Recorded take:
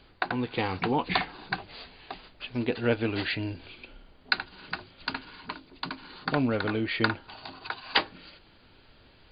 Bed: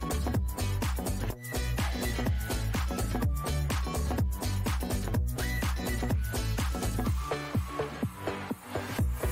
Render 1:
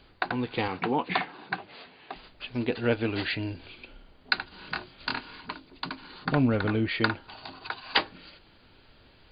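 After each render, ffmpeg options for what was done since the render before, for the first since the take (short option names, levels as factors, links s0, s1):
-filter_complex "[0:a]asettb=1/sr,asplit=3[s0][s1][s2];[s0]atrim=end=0.684[s3];[s1]atrim=start=0.68:end=2.16,asetpts=PTS-STARTPTS,afade=t=in:d=0.004:c=qsin,afade=t=out:st=1.476:d=0.004:c=qsin,highpass=160,lowpass=3300[s4];[s2]atrim=start=2.156[s5];[s3][s4]acrossfade=d=0.004:c1=hsin:c2=qsin[s6];[s6][s5]acrossfade=d=0.004:c1=qsin:c2=hsin,asettb=1/sr,asplit=3[s7][s8][s9];[s7]atrim=end=4.494[s10];[s8]atrim=start=4.49:end=5.41,asetpts=PTS-STARTPTS,afade=t=in:d=0.004:c=qsin,afade=t=out:st=0.916:d=0.004:c=qsin,asplit=2[s11][s12];[s12]adelay=25,volume=0.75[s13];[s11][s13]amix=inputs=2:normalize=0,atrim=end_sample=40572[s14];[s9]atrim=start=5.406[s15];[s10][s14]acrossfade=d=0.004:c1=hsin:c2=qsin[s16];[s16][s15]acrossfade=d=0.004:c1=qsin:c2=hsin,asettb=1/sr,asplit=3[s17][s18][s19];[s17]atrim=end=6.254[s20];[s18]atrim=start=6.25:end=6.89,asetpts=PTS-STARTPTS,afade=t=in:d=0.004:c=qsin,afade=t=out:st=0.636:d=0.004:c=qsin,bass=f=250:g=6,treble=f=4000:g=-6[s21];[s19]atrim=start=6.886[s22];[s20][s21]acrossfade=d=0.004:c1=hsin:c2=qsin[s23];[s23][s22]acrossfade=d=0.004:c1=qsin:c2=hsin"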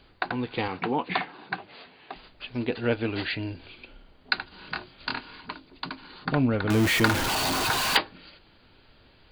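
-filter_complex "[0:a]asettb=1/sr,asplit=3[s0][s1][s2];[s0]atrim=end=6.704[s3];[s1]atrim=start=6.7:end=7.97,asetpts=PTS-STARTPTS,afade=t=in:d=0.004:c=qsin,afade=t=out:st=1.266:d=0.004:c=qsin,aeval=exprs='val(0)+0.5*0.0891*sgn(val(0))':c=same[s4];[s2]atrim=start=7.966[s5];[s3][s4]acrossfade=d=0.004:c1=hsin:c2=qsin[s6];[s6][s5]acrossfade=d=0.004:c1=qsin:c2=hsin"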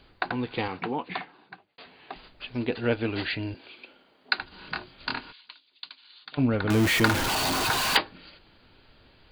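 -filter_complex "[0:a]asettb=1/sr,asplit=3[s0][s1][s2];[s0]atrim=end=3.544[s3];[s1]atrim=start=3.54:end=4.39,asetpts=PTS-STARTPTS,afade=t=in:d=0.004:c=qsin,afade=t=out:st=0.846:d=0.004:c=qsin,highpass=280[s4];[s2]atrim=start=4.386[s5];[s3][s4]acrossfade=d=0.004:c1=hsin:c2=qsin[s6];[s6][s5]acrossfade=d=0.004:c1=qsin:c2=hsin,asplit=3[s7][s8][s9];[s7]afade=t=out:st=5.31:d=0.02[s10];[s8]bandpass=f=3600:t=q:w=2.5,afade=t=in:st=5.31:d=0.02,afade=t=out:st=6.37:d=0.02[s11];[s9]afade=t=in:st=6.37:d=0.02[s12];[s10][s11][s12]amix=inputs=3:normalize=0,asplit=2[s13][s14];[s13]atrim=end=1.78,asetpts=PTS-STARTPTS,afade=t=out:st=0.52:d=1.26[s15];[s14]atrim=start=1.78,asetpts=PTS-STARTPTS,afade=t=in:d=0.004:c=hsin[s16];[s15][s16]concat=n=2:v=0:a=1"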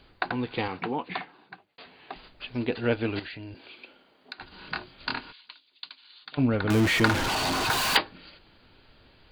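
-filter_complex "[0:a]asettb=1/sr,asplit=3[s0][s1][s2];[s0]atrim=end=3.194[s3];[s1]atrim=start=3.19:end=4.41,asetpts=PTS-STARTPTS,afade=t=in:d=0.004:c=qsin,afade=t=out:st=1.216:d=0.004:c=qsin,acompressor=threshold=0.0141:ratio=6:attack=3.2:release=140:knee=1:detection=peak[s4];[s2]atrim=start=4.406[s5];[s3][s4]acrossfade=d=0.004:c1=hsin:c2=qsin[s6];[s6][s5]acrossfade=d=0.004:c1=qsin:c2=hsin,asettb=1/sr,asplit=3[s7][s8][s9];[s7]atrim=end=6.804[s10];[s8]atrim=start=6.8:end=7.7,asetpts=PTS-STARTPTS,afade=t=in:d=0.004:c=qsin,afade=t=out:st=0.896:d=0.004:c=qsin,highshelf=f=10000:g=-11.5[s11];[s9]atrim=start=7.696[s12];[s10][s11]acrossfade=d=0.004:c1=hsin:c2=qsin[s13];[s13][s12]acrossfade=d=0.004:c1=qsin:c2=hsin"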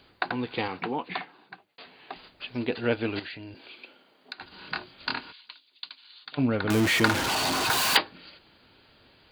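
-af "highpass=f=120:p=1,highshelf=f=5800:g=5"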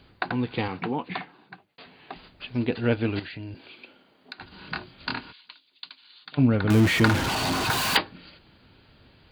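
-af "bass=f=250:g=9,treble=f=4000:g=-3"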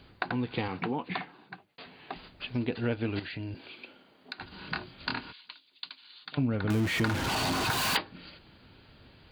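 -af "acompressor=threshold=0.0355:ratio=2.5"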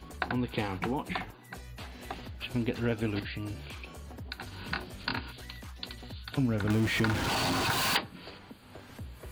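-filter_complex "[1:a]volume=0.178[s0];[0:a][s0]amix=inputs=2:normalize=0"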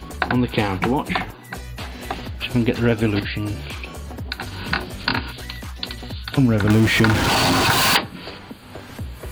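-af "volume=3.98,alimiter=limit=0.708:level=0:latency=1"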